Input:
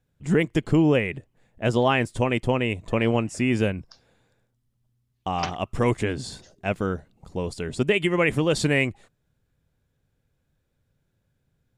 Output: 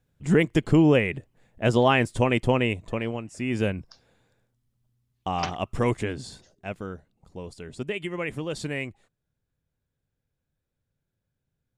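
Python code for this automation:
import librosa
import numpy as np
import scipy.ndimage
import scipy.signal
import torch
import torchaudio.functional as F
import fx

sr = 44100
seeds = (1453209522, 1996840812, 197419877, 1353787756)

y = fx.gain(x, sr, db=fx.line((2.65, 1.0), (3.22, -11.0), (3.69, -1.0), (5.73, -1.0), (6.87, -9.5)))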